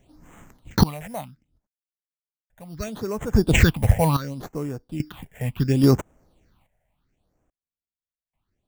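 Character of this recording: aliases and images of a low sample rate 5.1 kHz, jitter 0%; random-step tremolo 1.2 Hz, depth 100%; phasing stages 6, 0.7 Hz, lowest notch 300–4200 Hz

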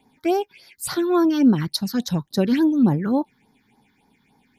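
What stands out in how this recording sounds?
phasing stages 6, 3.5 Hz, lowest notch 660–2800 Hz

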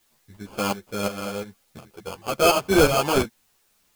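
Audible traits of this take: aliases and images of a low sample rate 1.9 kHz, jitter 0%; tremolo saw up 2.8 Hz, depth 70%; a quantiser's noise floor 12-bit, dither triangular; a shimmering, thickened sound

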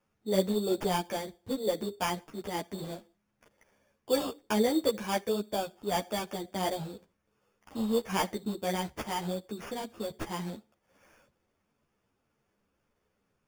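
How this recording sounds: aliases and images of a low sample rate 4 kHz, jitter 0%; a shimmering, thickened sound

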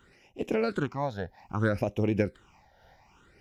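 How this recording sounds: phasing stages 8, 0.62 Hz, lowest notch 330–1400 Hz; random flutter of the level

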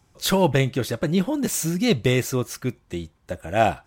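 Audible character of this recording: noise floor -62 dBFS; spectral tilt -5.0 dB/octave

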